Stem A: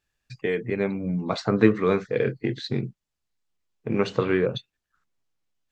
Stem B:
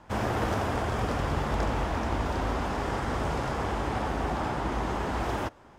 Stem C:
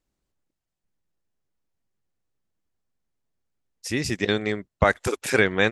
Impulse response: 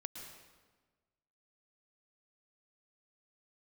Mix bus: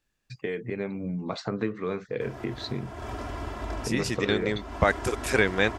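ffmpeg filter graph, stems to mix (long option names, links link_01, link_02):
-filter_complex "[0:a]acompressor=threshold=-29dB:ratio=2.5,volume=-1dB,asplit=2[link_01][link_02];[1:a]aecho=1:1:3:0.74,adelay=2100,volume=-9.5dB,asplit=2[link_03][link_04];[link_04]volume=-10dB[link_05];[2:a]volume=-3dB[link_06];[link_02]apad=whole_len=348075[link_07];[link_03][link_07]sidechaincompress=threshold=-42dB:ratio=8:attack=5:release=233[link_08];[3:a]atrim=start_sample=2205[link_09];[link_05][link_09]afir=irnorm=-1:irlink=0[link_10];[link_01][link_08][link_06][link_10]amix=inputs=4:normalize=0"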